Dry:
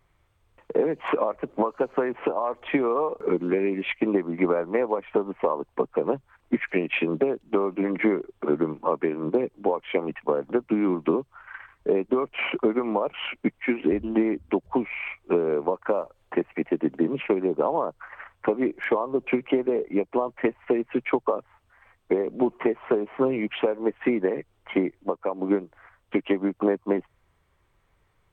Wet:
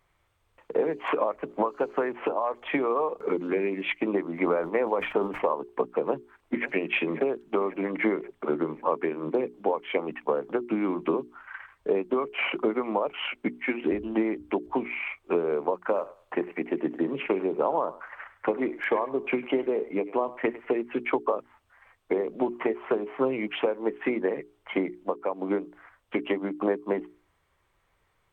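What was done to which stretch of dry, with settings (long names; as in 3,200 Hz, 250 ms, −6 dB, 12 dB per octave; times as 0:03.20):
0:04.32–0:05.42: level that may fall only so fast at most 92 dB per second
0:06.06–0:06.72: delay throw 540 ms, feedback 55%, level −14 dB
0:15.85–0:20.80: feedback echo with a high-pass in the loop 102 ms, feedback 26%, level −16 dB
whole clip: low-shelf EQ 320 Hz −6.5 dB; mains-hum notches 60/120/180/240/300/360/420 Hz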